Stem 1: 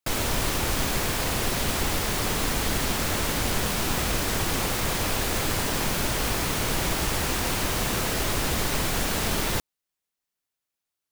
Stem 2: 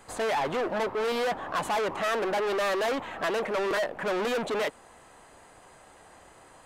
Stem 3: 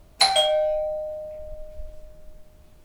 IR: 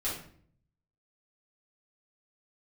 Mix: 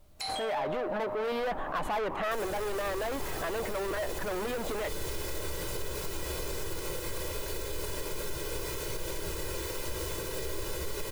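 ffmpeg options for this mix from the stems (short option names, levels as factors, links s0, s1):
-filter_complex "[0:a]equalizer=f=370:t=o:w=1.1:g=10,aecho=1:1:2:0.83,adelay=2250,volume=0.112,asplit=2[s0][s1];[s1]volume=0.668[s2];[1:a]equalizer=f=8000:t=o:w=1.8:g=-14,adelay=200,volume=1.33[s3];[2:a]acompressor=threshold=0.0708:ratio=6,volume=0.237,asplit=2[s4][s5];[s5]volume=0.631[s6];[3:a]atrim=start_sample=2205[s7];[s2][s6]amix=inputs=2:normalize=0[s8];[s8][s7]afir=irnorm=-1:irlink=0[s9];[s0][s3][s4][s9]amix=inputs=4:normalize=0,highshelf=f=4800:g=5.5,alimiter=level_in=1.12:limit=0.0631:level=0:latency=1:release=95,volume=0.891"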